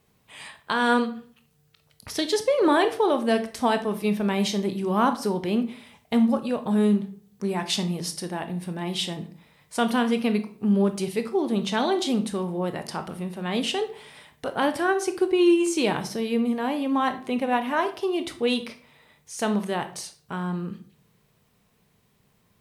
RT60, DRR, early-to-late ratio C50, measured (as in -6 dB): 0.50 s, 8.5 dB, 13.0 dB